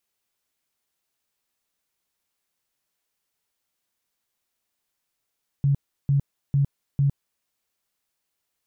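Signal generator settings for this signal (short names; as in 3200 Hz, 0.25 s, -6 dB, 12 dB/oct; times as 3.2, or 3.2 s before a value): tone bursts 140 Hz, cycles 15, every 0.45 s, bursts 4, -16.5 dBFS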